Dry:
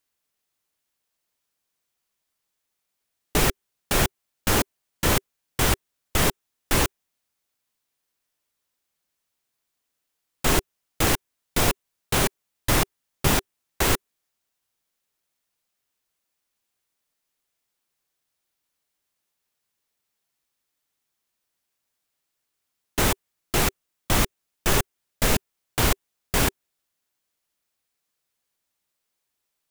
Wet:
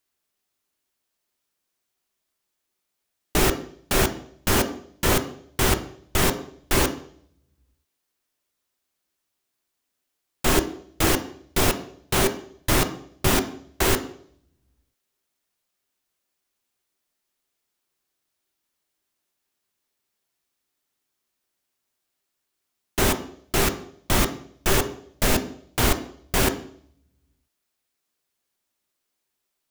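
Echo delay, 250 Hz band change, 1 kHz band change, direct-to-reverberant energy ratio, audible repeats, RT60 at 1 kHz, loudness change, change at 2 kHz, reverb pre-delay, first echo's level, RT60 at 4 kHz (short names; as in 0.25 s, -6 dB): none, +3.0 dB, +1.0 dB, 6.5 dB, none, 0.55 s, +0.5 dB, +0.5 dB, 3 ms, none, 0.60 s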